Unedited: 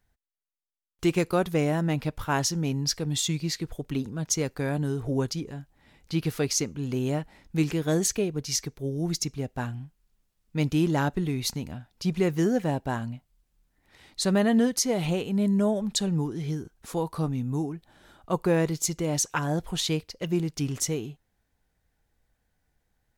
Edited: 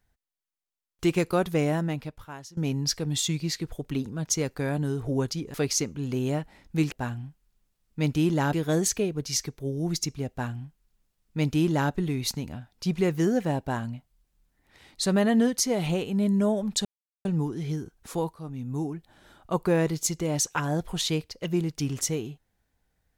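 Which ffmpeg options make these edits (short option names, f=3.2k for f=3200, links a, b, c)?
-filter_complex "[0:a]asplit=7[a][b][c][d][e][f][g];[a]atrim=end=2.57,asetpts=PTS-STARTPTS,afade=t=out:st=1.75:d=0.82:c=qua:silence=0.1[h];[b]atrim=start=2.57:end=5.542,asetpts=PTS-STARTPTS,afade=t=in:d=0.004:c=hsin:silence=0.1[i];[c]atrim=start=6.338:end=7.722[j];[d]atrim=start=9.488:end=11.102[k];[e]atrim=start=7.718:end=16.04,asetpts=PTS-STARTPTS,afade=t=out:st=8.318:d=0.004:c=hsin,apad=pad_dur=0.4[l];[f]atrim=start=16.04:end=17.13,asetpts=PTS-STARTPTS,afade=t=in:d=0.004:c=hsin,afade=t=out:st=1.086:d=0.004:c=hsin:silence=0.133352[m];[g]atrim=start=17.13,asetpts=PTS-STARTPTS,afade=t=in:d=0.56:silence=0.133352[n];[h][i]concat=n=2:v=0:a=1[o];[o][j]acrossfade=d=0.004:c1=hsin:c2=hsin[p];[p][k]acrossfade=d=0.004:c1=hsin:c2=hsin[q];[l][m][n]concat=n=3:v=0:a=1[r];[q][r]acrossfade=d=0.004:c1=hsin:c2=hsin"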